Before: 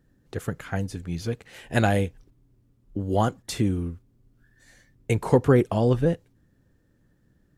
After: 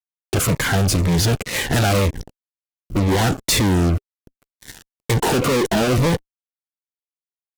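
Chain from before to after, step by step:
0:05.17–0:05.98: high-pass filter 200 Hz 12 dB per octave
fuzz pedal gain 45 dB, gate −50 dBFS
phaser whose notches keep moving one way falling 2 Hz
level −1.5 dB

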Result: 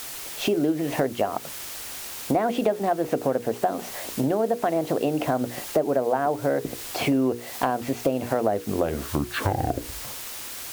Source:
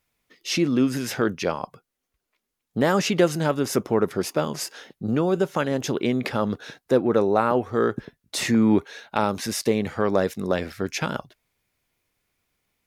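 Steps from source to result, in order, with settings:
turntable brake at the end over 2.90 s
low-pass filter 3,100 Hz
tilt shelving filter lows +6.5 dB
mains-hum notches 50/100/150/200/250/300/350/400 Hz
hollow resonant body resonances 600/2,300 Hz, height 8 dB, ringing for 20 ms
background noise white −40 dBFS
parametric band 150 Hz −8.5 dB 0.33 octaves
downward compressor 4 to 1, threshold −27 dBFS, peak gain reduction 16 dB
speed change +20%
level +5 dB

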